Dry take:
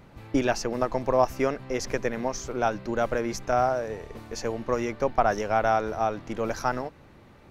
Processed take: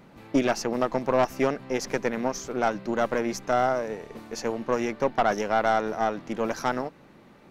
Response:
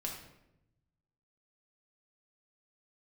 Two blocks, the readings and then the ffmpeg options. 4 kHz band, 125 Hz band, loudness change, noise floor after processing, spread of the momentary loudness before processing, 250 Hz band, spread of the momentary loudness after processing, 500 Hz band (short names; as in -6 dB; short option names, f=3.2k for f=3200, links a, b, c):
+1.5 dB, -3.0 dB, +0.5 dB, -53 dBFS, 8 LU, +2.0 dB, 7 LU, +0.5 dB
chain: -af "aeval=exprs='(tanh(7.94*val(0)+0.65)-tanh(0.65))/7.94':c=same,lowshelf=f=130:t=q:w=1.5:g=-9,volume=3.5dB"